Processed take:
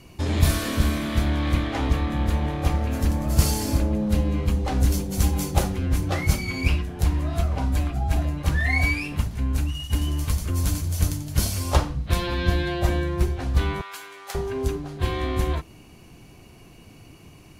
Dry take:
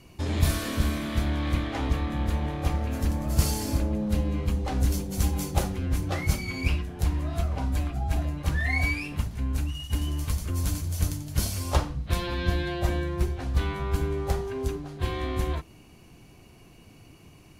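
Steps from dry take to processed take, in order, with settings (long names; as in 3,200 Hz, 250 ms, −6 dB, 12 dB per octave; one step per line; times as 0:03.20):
0:13.81–0:14.35: high-pass filter 1,300 Hz 12 dB per octave
level +4 dB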